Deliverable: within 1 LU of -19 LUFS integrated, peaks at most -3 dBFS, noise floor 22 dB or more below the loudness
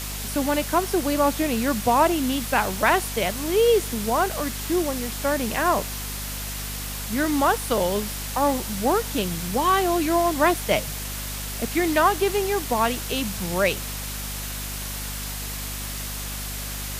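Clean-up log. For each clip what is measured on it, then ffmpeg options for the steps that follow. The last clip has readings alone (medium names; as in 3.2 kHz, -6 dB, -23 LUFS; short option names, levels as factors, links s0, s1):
hum 50 Hz; highest harmonic 250 Hz; hum level -32 dBFS; noise floor -32 dBFS; noise floor target -46 dBFS; loudness -24.0 LUFS; peak level -5.0 dBFS; loudness target -19.0 LUFS
-> -af "bandreject=f=50:t=h:w=4,bandreject=f=100:t=h:w=4,bandreject=f=150:t=h:w=4,bandreject=f=200:t=h:w=4,bandreject=f=250:t=h:w=4"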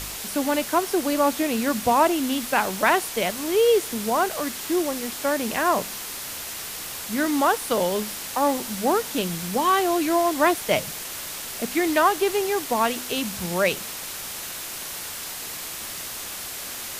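hum not found; noise floor -34 dBFS; noise floor target -46 dBFS
-> -af "afftdn=nr=12:nf=-34"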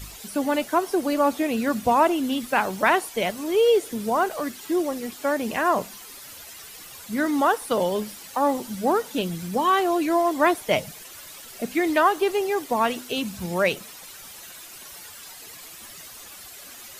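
noise floor -43 dBFS; noise floor target -46 dBFS
-> -af "afftdn=nr=6:nf=-43"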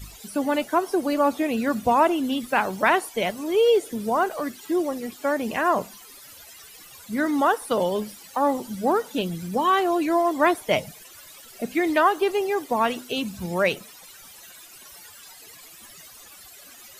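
noise floor -47 dBFS; loudness -23.5 LUFS; peak level -5.5 dBFS; loudness target -19.0 LUFS
-> -af "volume=1.68,alimiter=limit=0.708:level=0:latency=1"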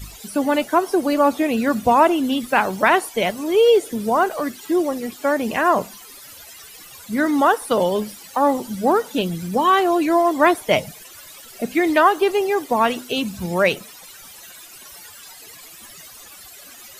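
loudness -19.0 LUFS; peak level -3.0 dBFS; noise floor -42 dBFS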